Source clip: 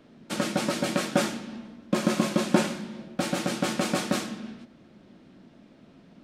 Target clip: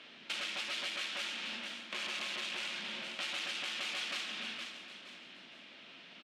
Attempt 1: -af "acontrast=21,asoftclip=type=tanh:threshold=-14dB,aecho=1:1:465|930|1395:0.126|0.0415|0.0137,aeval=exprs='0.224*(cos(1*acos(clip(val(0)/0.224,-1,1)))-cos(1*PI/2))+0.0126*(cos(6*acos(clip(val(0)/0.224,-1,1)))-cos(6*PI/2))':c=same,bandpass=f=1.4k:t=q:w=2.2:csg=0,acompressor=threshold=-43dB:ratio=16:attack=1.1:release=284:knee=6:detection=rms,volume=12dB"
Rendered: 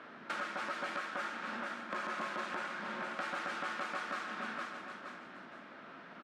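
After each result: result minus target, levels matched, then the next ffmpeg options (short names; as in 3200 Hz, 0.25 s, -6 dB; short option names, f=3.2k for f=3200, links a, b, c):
1000 Hz band +11.5 dB; soft clip: distortion -7 dB
-af "acontrast=21,asoftclip=type=tanh:threshold=-14dB,aecho=1:1:465|930|1395:0.126|0.0415|0.0137,aeval=exprs='0.224*(cos(1*acos(clip(val(0)/0.224,-1,1)))-cos(1*PI/2))+0.0126*(cos(6*acos(clip(val(0)/0.224,-1,1)))-cos(6*PI/2))':c=same,bandpass=f=2.9k:t=q:w=2.2:csg=0,acompressor=threshold=-43dB:ratio=16:attack=1.1:release=284:knee=6:detection=rms,volume=12dB"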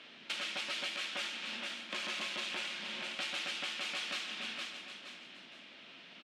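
soft clip: distortion -7 dB
-af "acontrast=21,asoftclip=type=tanh:threshold=-25dB,aecho=1:1:465|930|1395:0.126|0.0415|0.0137,aeval=exprs='0.224*(cos(1*acos(clip(val(0)/0.224,-1,1)))-cos(1*PI/2))+0.0126*(cos(6*acos(clip(val(0)/0.224,-1,1)))-cos(6*PI/2))':c=same,bandpass=f=2.9k:t=q:w=2.2:csg=0,acompressor=threshold=-43dB:ratio=16:attack=1.1:release=284:knee=6:detection=rms,volume=12dB"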